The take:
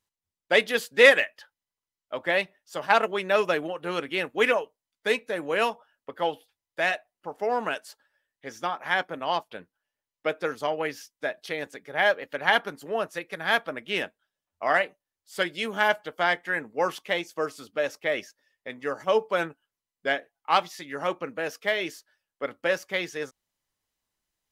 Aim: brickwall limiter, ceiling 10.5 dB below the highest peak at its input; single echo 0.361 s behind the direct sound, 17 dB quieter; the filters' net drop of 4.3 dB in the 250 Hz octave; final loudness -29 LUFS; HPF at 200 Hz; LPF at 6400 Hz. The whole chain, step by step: HPF 200 Hz; LPF 6400 Hz; bell 250 Hz -4.5 dB; limiter -13 dBFS; echo 0.361 s -17 dB

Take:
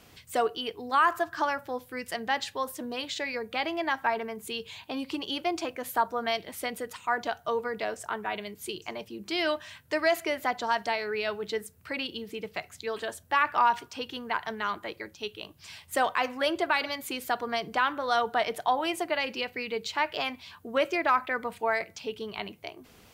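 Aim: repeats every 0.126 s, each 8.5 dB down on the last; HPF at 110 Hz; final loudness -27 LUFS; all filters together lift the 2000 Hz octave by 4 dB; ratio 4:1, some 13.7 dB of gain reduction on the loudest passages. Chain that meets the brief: HPF 110 Hz; bell 2000 Hz +5 dB; compressor 4:1, threshold -34 dBFS; feedback echo 0.126 s, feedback 38%, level -8.5 dB; gain +9.5 dB

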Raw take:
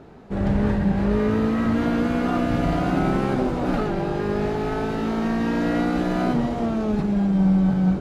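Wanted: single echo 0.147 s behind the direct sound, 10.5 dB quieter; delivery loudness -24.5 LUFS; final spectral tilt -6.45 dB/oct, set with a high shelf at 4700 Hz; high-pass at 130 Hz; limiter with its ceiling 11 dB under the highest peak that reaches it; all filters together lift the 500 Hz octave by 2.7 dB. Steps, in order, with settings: HPF 130 Hz; bell 500 Hz +3.5 dB; high shelf 4700 Hz +8 dB; limiter -19.5 dBFS; echo 0.147 s -10.5 dB; gain +2.5 dB

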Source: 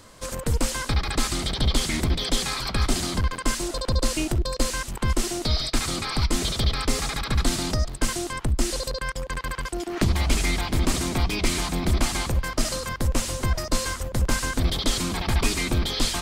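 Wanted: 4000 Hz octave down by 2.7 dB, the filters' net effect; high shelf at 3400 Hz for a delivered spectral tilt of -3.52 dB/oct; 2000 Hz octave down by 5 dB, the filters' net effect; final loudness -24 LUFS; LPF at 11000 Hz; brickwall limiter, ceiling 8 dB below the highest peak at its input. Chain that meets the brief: LPF 11000 Hz; bell 2000 Hz -7 dB; high shelf 3400 Hz +7.5 dB; bell 4000 Hz -7 dB; gain +3.5 dB; limiter -13 dBFS

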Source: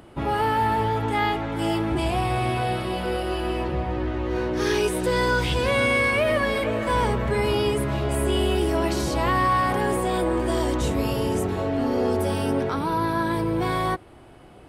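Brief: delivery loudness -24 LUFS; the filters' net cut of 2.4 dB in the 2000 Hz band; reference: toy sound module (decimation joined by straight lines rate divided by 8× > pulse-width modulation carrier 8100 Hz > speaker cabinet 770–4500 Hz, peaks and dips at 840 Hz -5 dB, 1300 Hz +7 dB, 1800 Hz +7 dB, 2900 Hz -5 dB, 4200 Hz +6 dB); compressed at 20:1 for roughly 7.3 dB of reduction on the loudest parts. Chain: bell 2000 Hz -8.5 dB; compressor 20:1, threshold -26 dBFS; decimation joined by straight lines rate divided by 8×; pulse-width modulation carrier 8100 Hz; speaker cabinet 770–4500 Hz, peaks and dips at 840 Hz -5 dB, 1300 Hz +7 dB, 1800 Hz +7 dB, 2900 Hz -5 dB, 4200 Hz +6 dB; gain +13.5 dB

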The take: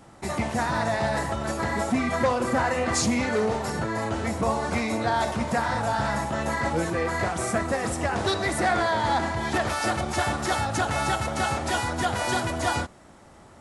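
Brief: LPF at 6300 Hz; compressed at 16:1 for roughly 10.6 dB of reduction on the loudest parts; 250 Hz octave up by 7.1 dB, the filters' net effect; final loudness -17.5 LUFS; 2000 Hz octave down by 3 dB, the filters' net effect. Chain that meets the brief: LPF 6300 Hz; bell 250 Hz +8.5 dB; bell 2000 Hz -4 dB; compressor 16:1, threshold -23 dBFS; gain +10.5 dB

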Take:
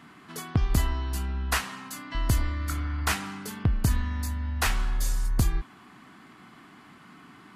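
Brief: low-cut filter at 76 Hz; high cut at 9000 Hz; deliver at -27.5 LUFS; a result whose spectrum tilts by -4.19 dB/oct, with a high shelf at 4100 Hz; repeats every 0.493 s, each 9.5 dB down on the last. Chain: HPF 76 Hz; LPF 9000 Hz; high shelf 4100 Hz +7.5 dB; feedback echo 0.493 s, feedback 33%, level -9.5 dB; gain +2.5 dB

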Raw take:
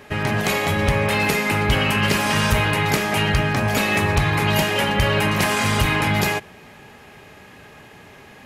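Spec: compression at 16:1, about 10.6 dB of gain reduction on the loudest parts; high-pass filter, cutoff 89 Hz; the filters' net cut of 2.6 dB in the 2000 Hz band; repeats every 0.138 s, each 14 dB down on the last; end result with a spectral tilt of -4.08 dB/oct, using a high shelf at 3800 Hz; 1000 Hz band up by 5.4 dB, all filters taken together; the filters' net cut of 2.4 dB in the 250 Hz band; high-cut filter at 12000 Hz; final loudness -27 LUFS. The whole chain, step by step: HPF 89 Hz; LPF 12000 Hz; bell 250 Hz -3.5 dB; bell 1000 Hz +8 dB; bell 2000 Hz -8 dB; high shelf 3800 Hz +8.5 dB; compressor 16:1, threshold -24 dBFS; feedback echo 0.138 s, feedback 20%, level -14 dB; gain +0.5 dB

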